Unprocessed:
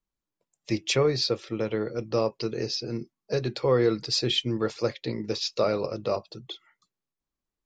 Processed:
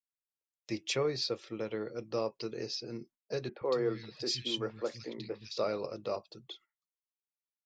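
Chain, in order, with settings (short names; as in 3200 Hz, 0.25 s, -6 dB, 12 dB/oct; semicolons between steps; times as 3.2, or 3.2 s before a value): gate -49 dBFS, range -22 dB; low shelf 120 Hz -10 dB; 3.49–5.58 three bands offset in time mids, lows, highs 0.12/0.16 s, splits 190/2200 Hz; gain -7.5 dB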